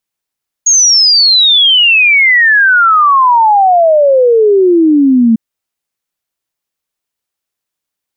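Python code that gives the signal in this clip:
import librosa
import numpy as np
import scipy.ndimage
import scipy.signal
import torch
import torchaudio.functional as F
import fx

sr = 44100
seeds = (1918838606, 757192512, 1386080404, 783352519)

y = fx.ess(sr, length_s=4.7, from_hz=6700.0, to_hz=220.0, level_db=-4.0)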